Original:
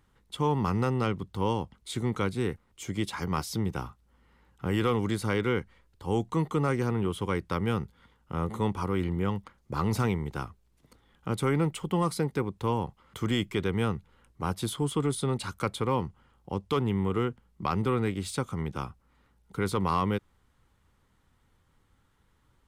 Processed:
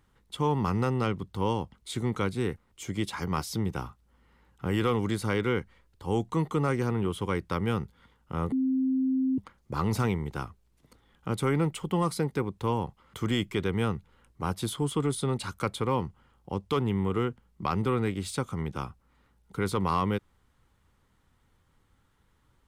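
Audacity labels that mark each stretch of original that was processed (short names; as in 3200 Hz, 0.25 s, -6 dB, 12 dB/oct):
8.520000	9.380000	bleep 262 Hz -23 dBFS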